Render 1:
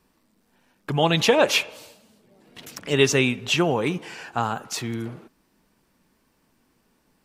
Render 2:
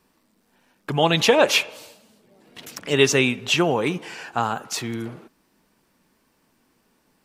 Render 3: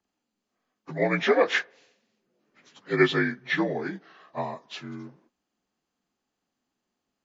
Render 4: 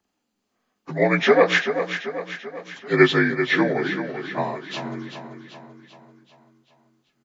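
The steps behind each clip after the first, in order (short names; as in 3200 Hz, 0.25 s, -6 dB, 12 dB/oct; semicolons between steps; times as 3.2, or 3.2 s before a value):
low shelf 130 Hz -6.5 dB; gain +2 dB
inharmonic rescaling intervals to 82%; upward expander 1.5:1, over -41 dBFS; gain -1.5 dB
feedback echo 0.388 s, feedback 53%, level -9 dB; gain +5.5 dB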